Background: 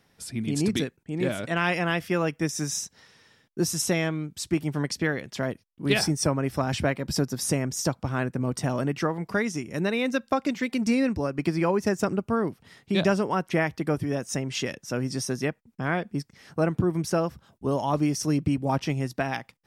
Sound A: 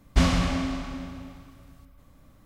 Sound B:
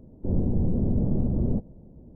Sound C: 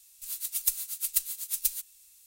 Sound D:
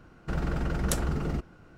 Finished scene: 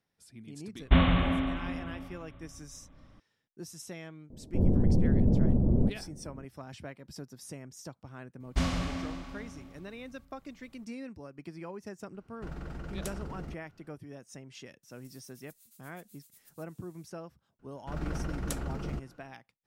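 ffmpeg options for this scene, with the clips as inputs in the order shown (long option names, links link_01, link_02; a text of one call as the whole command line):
ffmpeg -i bed.wav -i cue0.wav -i cue1.wav -i cue2.wav -i cue3.wav -filter_complex "[1:a]asplit=2[link_01][link_02];[4:a]asplit=2[link_03][link_04];[0:a]volume=-18.5dB[link_05];[link_01]aresample=8000,aresample=44100[link_06];[3:a]acompressor=threshold=-46dB:ratio=6:attack=3.2:release=140:knee=1:detection=peak[link_07];[link_04]dynaudnorm=framelen=140:gausssize=5:maxgain=15dB[link_08];[link_06]atrim=end=2.45,asetpts=PTS-STARTPTS,volume=-1dB,afade=type=in:duration=0.004:curve=hsin,afade=type=out:start_time=2.446:duration=0.004:curve=hsin,adelay=750[link_09];[2:a]atrim=end=2.15,asetpts=PTS-STARTPTS,afade=type=in:duration=0.004:curve=hsin,afade=type=out:start_time=2.146:duration=0.004:curve=hsin,adelay=4300[link_10];[link_02]atrim=end=2.45,asetpts=PTS-STARTPTS,volume=-8.5dB,afade=type=in:duration=0.004:curve=hsin,afade=type=out:start_time=2.446:duration=0.004:curve=hsin,adelay=8400[link_11];[link_03]atrim=end=1.77,asetpts=PTS-STARTPTS,volume=-11.5dB,afade=type=in:duration=0.004:curve=hsin,afade=type=out:start_time=1.766:duration=0.004:curve=hsin,adelay=12140[link_12];[link_07]atrim=end=2.26,asetpts=PTS-STARTPTS,volume=-11.5dB,afade=type=in:duration=0.004:curve=hsin,afade=type=out:start_time=2.256:duration=0.004:curve=hsin,adelay=14830[link_13];[link_08]atrim=end=1.77,asetpts=PTS-STARTPTS,volume=-18dB,afade=type=in:duration=0.004:curve=hsin,afade=type=out:start_time=1.766:duration=0.004:curve=hsin,adelay=17590[link_14];[link_05][link_09][link_10][link_11][link_12][link_13][link_14]amix=inputs=7:normalize=0" out.wav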